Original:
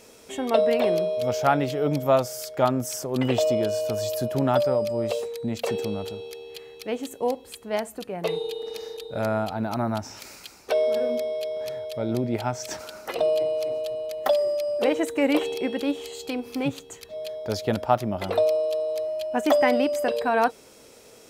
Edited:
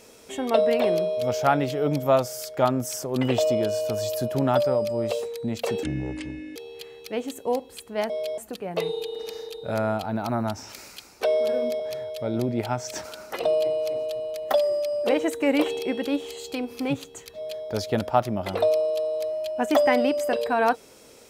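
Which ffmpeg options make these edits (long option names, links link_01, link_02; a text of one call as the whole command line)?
ffmpeg -i in.wav -filter_complex "[0:a]asplit=6[link_01][link_02][link_03][link_04][link_05][link_06];[link_01]atrim=end=5.834[link_07];[link_02]atrim=start=5.83:end=6.31,asetpts=PTS-STARTPTS,asetrate=29106,aresample=44100[link_08];[link_03]atrim=start=6.306:end=7.852[link_09];[link_04]atrim=start=11.268:end=11.552[link_10];[link_05]atrim=start=7.848:end=11.272[link_11];[link_06]atrim=start=11.548[link_12];[link_07][link_08]acrossfade=duration=0.004:curve1=hsin:curve2=hsin[link_13];[link_13][link_09]acrossfade=duration=0.004:curve1=hsin:curve2=hsin[link_14];[link_14][link_10]acrossfade=duration=0.004:curve1=hsin:curve2=hsin[link_15];[link_15][link_11]acrossfade=duration=0.004:curve1=hsin:curve2=hsin[link_16];[link_16][link_12]acrossfade=duration=0.004:curve1=hsin:curve2=hsin" out.wav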